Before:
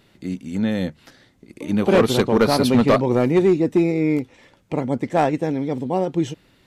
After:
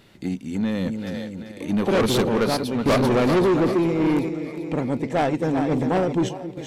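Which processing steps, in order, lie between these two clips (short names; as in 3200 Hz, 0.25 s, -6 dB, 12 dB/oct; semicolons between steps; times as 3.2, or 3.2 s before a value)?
split-band echo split 450 Hz, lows 0.268 s, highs 0.39 s, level -9.5 dB; random-step tremolo, depth 80%; soft clip -21 dBFS, distortion -8 dB; gain +5.5 dB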